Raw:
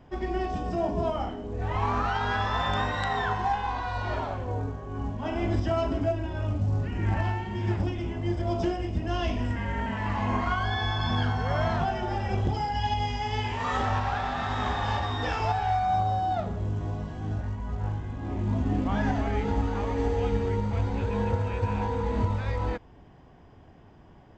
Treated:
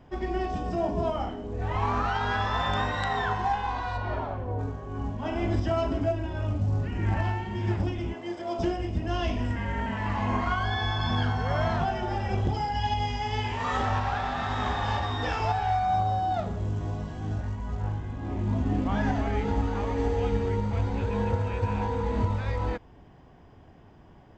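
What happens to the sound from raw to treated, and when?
3.96–4.58 s: low-pass 2.2 kHz -> 1.2 kHz 6 dB/octave
8.14–8.59 s: high-pass 360 Hz
16.34–17.82 s: treble shelf 4.6 kHz +5 dB

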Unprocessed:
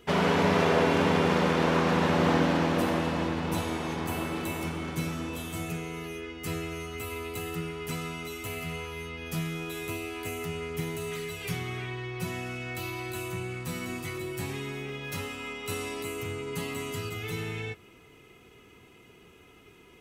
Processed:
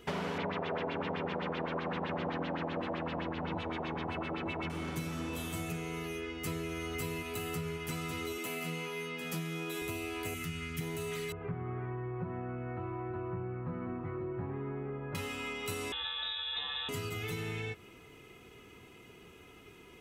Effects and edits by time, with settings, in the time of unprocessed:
0.38–4.70 s: LFO low-pass sine 7.8 Hz 640–3800 Hz
5.92–6.67 s: echo throw 550 ms, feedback 70%, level -0.5 dB
8.38–9.82 s: steep high-pass 150 Hz
10.34–10.81 s: high-order bell 630 Hz -14 dB
11.32–15.15 s: low-pass 1.4 kHz 24 dB/octave
15.92–16.89 s: frequency inversion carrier 3.8 kHz
whole clip: compression, threshold -34 dBFS

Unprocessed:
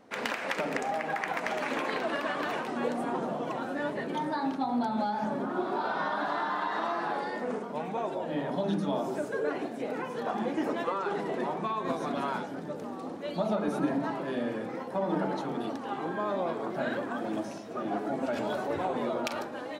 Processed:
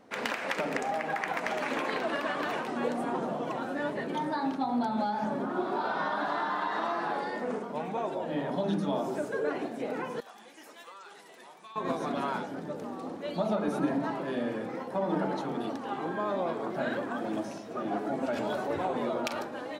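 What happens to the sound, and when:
10.20–11.76 s: pre-emphasis filter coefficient 0.97

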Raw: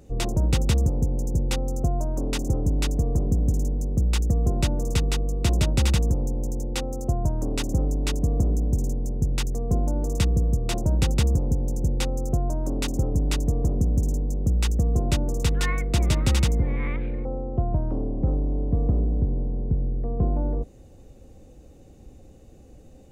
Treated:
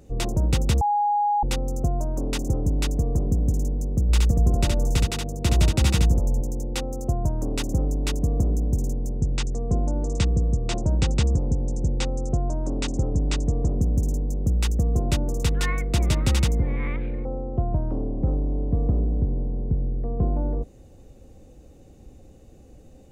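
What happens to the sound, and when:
0.81–1.43 s: bleep 826 Hz -18.5 dBFS
4.02–6.41 s: delay 70 ms -3 dB
9.20–13.82 s: steep low-pass 8.4 kHz

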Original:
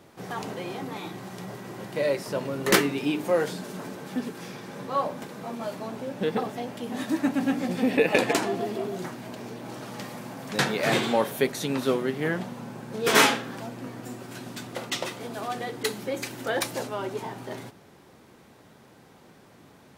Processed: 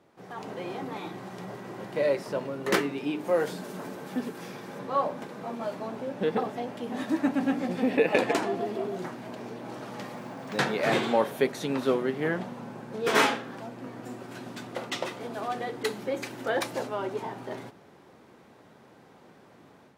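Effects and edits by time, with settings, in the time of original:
3.27–4.79 s: treble shelf 10 kHz +11 dB
10.15–10.57 s: careless resampling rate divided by 2×, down filtered, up hold
whole clip: high-pass 640 Hz 6 dB/octave; tilt EQ -3 dB/octave; level rider gain up to 8 dB; trim -6.5 dB

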